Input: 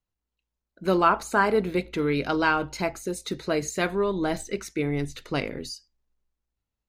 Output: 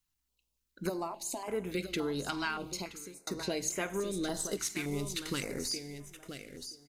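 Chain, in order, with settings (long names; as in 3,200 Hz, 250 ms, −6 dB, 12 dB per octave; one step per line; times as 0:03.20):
0:04.34–0:05.68: variable-slope delta modulation 64 kbit/s
high-shelf EQ 2,600 Hz +11 dB
mains-hum notches 50/100/150 Hz
downward compressor 6 to 1, threshold −31 dBFS, peak gain reduction 17 dB
0:00.89–0:01.48: phaser with its sweep stopped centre 300 Hz, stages 8
repeating echo 973 ms, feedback 15%, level −9.5 dB
0:02.50–0:03.27: fade out
four-comb reverb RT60 1.2 s, combs from 32 ms, DRR 17 dB
notch on a step sequencer 3.5 Hz 510–4,300 Hz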